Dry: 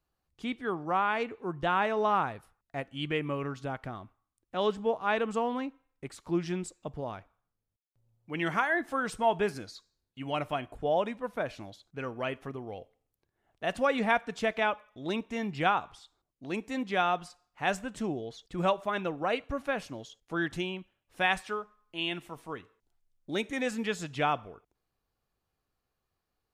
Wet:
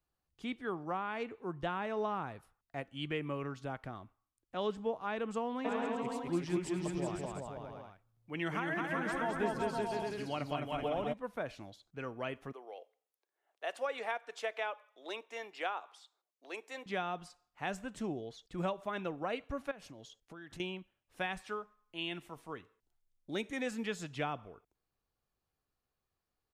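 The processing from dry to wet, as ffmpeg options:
ffmpeg -i in.wav -filter_complex "[0:a]asplit=3[link_01][link_02][link_03];[link_01]afade=type=out:start_time=5.64:duration=0.02[link_04];[link_02]aecho=1:1:210|378|512.4|619.9|705.9|774.7:0.794|0.631|0.501|0.398|0.316|0.251,afade=type=in:start_time=5.64:duration=0.02,afade=type=out:start_time=11.12:duration=0.02[link_05];[link_03]afade=type=in:start_time=11.12:duration=0.02[link_06];[link_04][link_05][link_06]amix=inputs=3:normalize=0,asettb=1/sr,asplit=3[link_07][link_08][link_09];[link_07]atrim=end=12.524[link_10];[link_08]atrim=start=12.52:end=16.86,asetpts=PTS-STARTPTS,afade=type=in:duration=0.004:curve=qsin,afade=type=out:start_time=4.336:duration=0.004:curve=qsin,highpass=frequency=430:width=0.5412,highpass=frequency=430:width=1.3066[link_11];[link_09]atrim=start=16.856[link_12];[link_10][link_11]acrossfade=duration=0.004:curve1=hsin:curve2=qsin[link_13];[link_13][link_12]acrossfade=duration=0.004:curve1=qsin:curve2=hsin,asettb=1/sr,asplit=3[link_14][link_15][link_16];[link_14]atrim=end=19.714[link_17];[link_15]atrim=start=19.71:end=20.6,asetpts=PTS-STARTPTS,afade=type=in:duration=0.004:curve=qsin,afade=type=out:start_time=0.886:duration=0.004:curve=qsin,acompressor=threshold=-41dB:ratio=12:attack=3.2:release=140:knee=1:detection=peak[link_18];[link_16]atrim=start=20.596[link_19];[link_17][link_18]acrossfade=duration=0.004:curve1=hsin:curve2=qsin[link_20];[link_20][link_19]acrossfade=duration=0.004:curve1=qsin:curve2=hsin,acrossover=split=390[link_21][link_22];[link_22]acompressor=threshold=-29dB:ratio=6[link_23];[link_21][link_23]amix=inputs=2:normalize=0,volume=-5dB" out.wav

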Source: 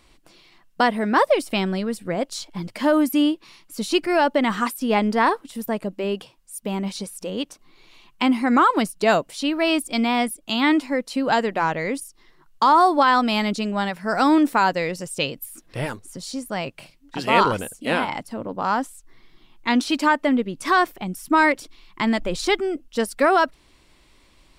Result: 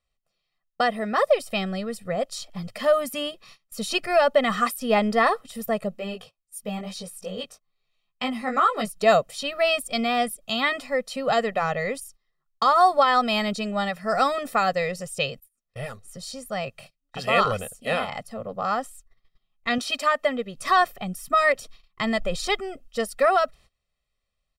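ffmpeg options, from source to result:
ffmpeg -i in.wav -filter_complex "[0:a]asplit=3[link_01][link_02][link_03];[link_01]afade=type=out:start_time=5.91:duration=0.02[link_04];[link_02]flanger=delay=16:depth=3.6:speed=2.3,afade=type=in:start_time=5.91:duration=0.02,afade=type=out:start_time=8.89:duration=0.02[link_05];[link_03]afade=type=in:start_time=8.89:duration=0.02[link_06];[link_04][link_05][link_06]amix=inputs=3:normalize=0,asettb=1/sr,asplit=3[link_07][link_08][link_09];[link_07]atrim=end=19.784[link_10];[link_08]atrim=start=19.78:end=20.56,asetpts=PTS-STARTPTS,afade=type=in:duration=0.004:curve=qsin,afade=type=out:start_time=0.776:duration=0.004:curve=qsin,lowshelf=frequency=200:gain=-9.5[link_11];[link_09]atrim=start=20.556[link_12];[link_10][link_11]acrossfade=duration=0.004:curve1=hsin:curve2=qsin[link_13];[link_13][link_12]acrossfade=duration=0.004:curve1=qsin:curve2=hsin,asplit=2[link_14][link_15];[link_14]atrim=end=15.4,asetpts=PTS-STARTPTS,afade=type=out:start_time=15.396:duration=0.004:curve=hsin:silence=0.0794328[link_16];[link_15]atrim=start=15.4,asetpts=PTS-STARTPTS,afade=type=in:duration=0.8:silence=0.0794328[link_17];[link_16][link_17]concat=n=2:v=0:a=1,agate=range=-22dB:threshold=-44dB:ratio=16:detection=peak,aecho=1:1:1.6:0.99,dynaudnorm=framelen=210:gausssize=21:maxgain=11.5dB,volume=-6.5dB" out.wav

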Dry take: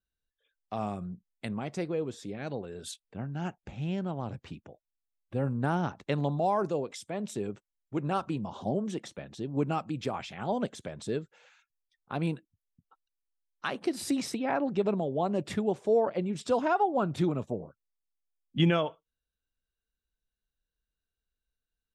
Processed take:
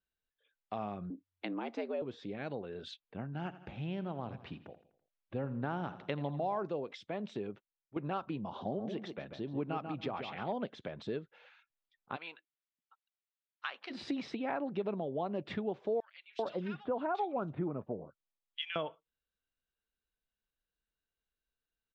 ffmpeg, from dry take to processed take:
ffmpeg -i in.wav -filter_complex "[0:a]asettb=1/sr,asplit=3[link_01][link_02][link_03];[link_01]atrim=end=1.104[link_04];[link_02]atrim=start=1.1:end=2.02,asetpts=PTS-STARTPTS,afade=type=in:duration=0.004:curve=qsin,afade=type=out:start_time=0.916:duration=0.004:curve=qsin,afreqshift=89[link_05];[link_03]atrim=start=2.016[link_06];[link_04][link_05]acrossfade=duration=0.004:curve1=hsin:curve2=qsin[link_07];[link_07][link_06]acrossfade=duration=0.004:curve1=qsin:curve2=hsin,asplit=3[link_08][link_09][link_10];[link_08]afade=type=out:start_time=3.32:duration=0.02[link_11];[link_09]aecho=1:1:83|166|249|332:0.158|0.0792|0.0396|0.0198,afade=type=in:start_time=3.32:duration=0.02,afade=type=out:start_time=6.58:duration=0.02[link_12];[link_10]afade=type=in:start_time=6.58:duration=0.02[link_13];[link_11][link_12][link_13]amix=inputs=3:normalize=0,asettb=1/sr,asplit=3[link_14][link_15][link_16];[link_14]atrim=end=8.584[link_17];[link_15]atrim=start=8.58:end=10.53,asetpts=PTS-STARTPTS,afade=type=in:duration=0.004:curve=qsin,afade=type=out:start_time=1.946:duration=0.004:curve=qsin,asplit=2[link_18][link_19];[link_19]adelay=140,lowpass=frequency=2300:poles=1,volume=-8dB,asplit=2[link_20][link_21];[link_21]adelay=140,lowpass=frequency=2300:poles=1,volume=0.17,asplit=2[link_22][link_23];[link_23]adelay=140,lowpass=frequency=2300:poles=1,volume=0.17[link_24];[link_18][link_20][link_22][link_24]amix=inputs=4:normalize=0,atrim=end_sample=85995[link_25];[link_16]atrim=start=10.526[link_26];[link_17][link_25]acrossfade=duration=0.004:curve1=hsin:curve2=qsin[link_27];[link_27][link_26]acrossfade=duration=0.004:curve1=qsin:curve2=hsin,asplit=3[link_28][link_29][link_30];[link_28]afade=type=out:start_time=12.15:duration=0.02[link_31];[link_29]highpass=1200,afade=type=in:start_time=12.15:duration=0.02,afade=type=out:start_time=13.9:duration=0.02[link_32];[link_30]afade=type=in:start_time=13.9:duration=0.02[link_33];[link_31][link_32][link_33]amix=inputs=3:normalize=0,asettb=1/sr,asplit=3[link_34][link_35][link_36];[link_34]atrim=end=16.004[link_37];[link_35]atrim=start=16:end=18.76,asetpts=PTS-STARTPTS,afade=type=in:duration=0.004:curve=qsin,afade=type=out:start_time=2.756:duration=0.004:curve=qsin,acrossover=split=1900[link_38][link_39];[link_38]adelay=390[link_40];[link_40][link_39]amix=inputs=2:normalize=0,atrim=end_sample=121716[link_41];[link_36]atrim=start=18.756[link_42];[link_37][link_41]acrossfade=duration=0.004:curve1=hsin:curve2=qsin[link_43];[link_43][link_42]acrossfade=duration=0.004:curve1=qsin:curve2=hsin,asplit=2[link_44][link_45];[link_44]atrim=end=7.96,asetpts=PTS-STARTPTS,afade=type=out:start_time=7.33:duration=0.63:silence=0.211349[link_46];[link_45]atrim=start=7.96,asetpts=PTS-STARTPTS,afade=type=in:duration=0.004:curve=hsin:silence=0.211349[link_47];[link_46][link_47]concat=n=2:v=0:a=1,lowpass=frequency=3900:width=0.5412,lowpass=frequency=3900:width=1.3066,lowshelf=frequency=130:gain=-8.5,acompressor=threshold=-37dB:ratio=2" out.wav

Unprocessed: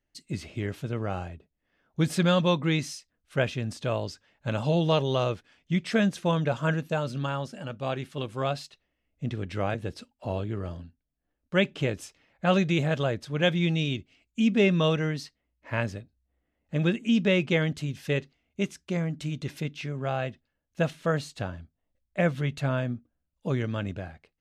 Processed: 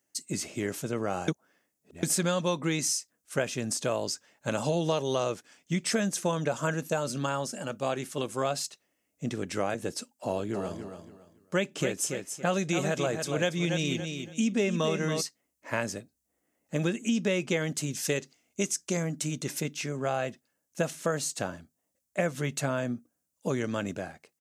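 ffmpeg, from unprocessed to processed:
ffmpeg -i in.wav -filter_complex "[0:a]asplit=3[link_01][link_02][link_03];[link_01]afade=type=out:start_time=10.53:duration=0.02[link_04];[link_02]aecho=1:1:281|562|843:0.355|0.0923|0.024,afade=type=in:start_time=10.53:duration=0.02,afade=type=out:start_time=15.2:duration=0.02[link_05];[link_03]afade=type=in:start_time=15.2:duration=0.02[link_06];[link_04][link_05][link_06]amix=inputs=3:normalize=0,asettb=1/sr,asplit=3[link_07][link_08][link_09];[link_07]atrim=end=17.934[link_10];[link_08]atrim=start=17.93:end=19.03,asetpts=PTS-STARTPTS,afade=type=in:duration=0.004:curve=qsin,afade=type=out:start_time=1.096:duration=0.004:curve=qsin,equalizer=frequency=6100:width=0.72:gain=5[link_11];[link_09]atrim=start=19.026[link_12];[link_10][link_11]acrossfade=duration=0.004:curve1=hsin:curve2=qsin[link_13];[link_13][link_12]acrossfade=duration=0.004:curve1=qsin:curve2=hsin,asplit=3[link_14][link_15][link_16];[link_14]atrim=end=1.282[link_17];[link_15]atrim=start=1.278:end=2.032,asetpts=PTS-STARTPTS,areverse[link_18];[link_16]atrim=start=2.028[link_19];[link_17][link_18]acrossfade=duration=0.004:curve1=hsin:curve2=hsin[link_20];[link_20][link_19]acrossfade=duration=0.004:curve1=hsin:curve2=hsin,highpass=200,highshelf=frequency=5000:width_type=q:width=1.5:gain=10.5,acompressor=threshold=-28dB:ratio=4,volume=3.5dB" out.wav

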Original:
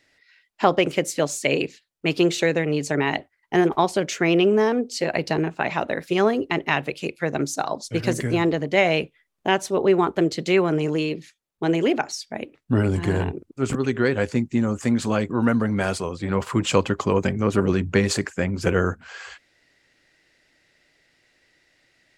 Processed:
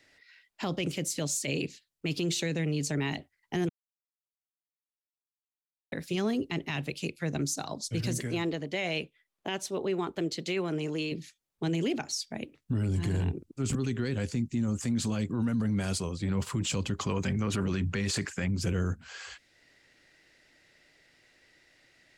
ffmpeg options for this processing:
ffmpeg -i in.wav -filter_complex "[0:a]asettb=1/sr,asplit=3[link_01][link_02][link_03];[link_01]atrim=end=8.184[link_04];[link_02]atrim=start=8.18:end=11.12,asetpts=PTS-STARTPTS,afade=type=in:duration=0.004:curve=qsin,afade=type=out:start_time=2.936:duration=0.004:curve=qsin,bass=frequency=250:gain=-10,treble=frequency=4000:gain=-5[link_05];[link_03]atrim=start=11.116[link_06];[link_04][link_05]acrossfade=duration=0.004:curve1=hsin:curve2=qsin[link_07];[link_07][link_06]acrossfade=duration=0.004:curve1=qsin:curve2=hsin,asettb=1/sr,asplit=3[link_08][link_09][link_10];[link_08]atrim=end=16.994[link_11];[link_09]atrim=start=16.99:end=18.48,asetpts=PTS-STARTPTS,afade=type=in:duration=0.004:curve=qsin,afade=type=out:start_time=1.486:duration=0.004:curve=qsin,equalizer=frequency=1400:width=0.41:gain=11.5[link_12];[link_10]atrim=start=18.476[link_13];[link_11][link_12]acrossfade=duration=0.004:curve1=hsin:curve2=qsin[link_14];[link_14][link_13]acrossfade=duration=0.004:curve1=qsin:curve2=hsin,asplit=3[link_15][link_16][link_17];[link_15]atrim=end=3.69,asetpts=PTS-STARTPTS,afade=type=out:start_time=3.686:duration=0.004:curve=hsin[link_18];[link_16]atrim=start=3.69:end=5.92,asetpts=PTS-STARTPTS,volume=0[link_19];[link_17]atrim=start=5.92,asetpts=PTS-STARTPTS,afade=type=in:duration=0.004:curve=hsin[link_20];[link_18][link_19][link_20]concat=n=3:v=0:a=1,acrossover=split=250|3000[link_21][link_22][link_23];[link_22]acompressor=threshold=-58dB:ratio=1.5[link_24];[link_21][link_24][link_23]amix=inputs=3:normalize=0,alimiter=limit=-22dB:level=0:latency=1:release=17" out.wav

